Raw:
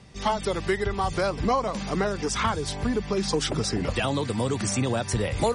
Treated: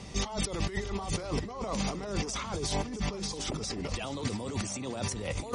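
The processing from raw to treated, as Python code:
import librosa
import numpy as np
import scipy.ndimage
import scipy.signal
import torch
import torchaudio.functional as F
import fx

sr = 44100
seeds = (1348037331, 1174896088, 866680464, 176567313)

p1 = fx.graphic_eq_31(x, sr, hz=(125, 1600, 6300), db=(-7, -7, 5))
p2 = fx.over_compress(p1, sr, threshold_db=-35.0, ratio=-1.0)
y = p2 + fx.echo_single(p2, sr, ms=653, db=-14.0, dry=0)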